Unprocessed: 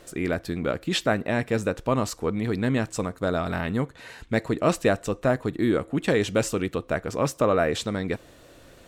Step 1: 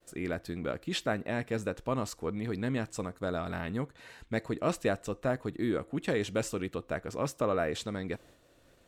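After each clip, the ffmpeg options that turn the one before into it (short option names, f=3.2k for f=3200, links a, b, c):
-af "agate=range=-33dB:threshold=-45dB:ratio=3:detection=peak,volume=-8dB"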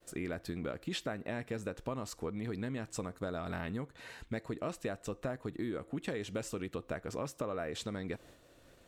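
-af "acompressor=threshold=-36dB:ratio=6,volume=1.5dB"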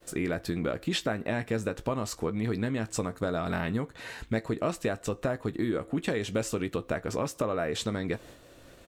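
-filter_complex "[0:a]asplit=2[a][b];[b]adelay=18,volume=-12dB[c];[a][c]amix=inputs=2:normalize=0,volume=8dB"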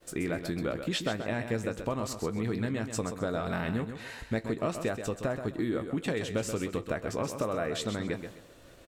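-af "aecho=1:1:130|260|390:0.376|0.101|0.0274,volume=-2dB"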